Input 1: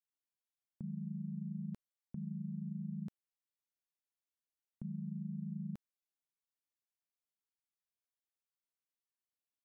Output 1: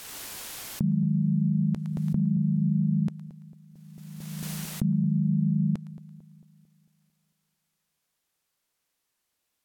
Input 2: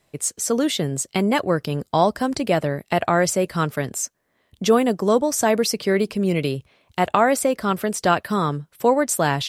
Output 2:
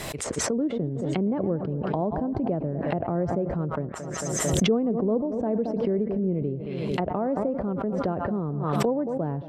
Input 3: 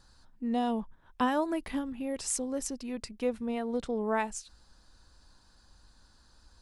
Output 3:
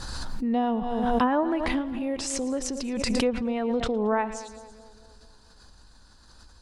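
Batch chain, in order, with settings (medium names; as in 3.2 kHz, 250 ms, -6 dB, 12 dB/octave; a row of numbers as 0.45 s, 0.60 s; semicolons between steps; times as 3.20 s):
two-band feedback delay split 770 Hz, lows 224 ms, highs 112 ms, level -15.5 dB; low-pass that closes with the level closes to 460 Hz, closed at -19.5 dBFS; swell ahead of each attack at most 24 dB/s; normalise loudness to -27 LUFS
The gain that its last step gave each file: +16.5 dB, -4.5 dB, +4.5 dB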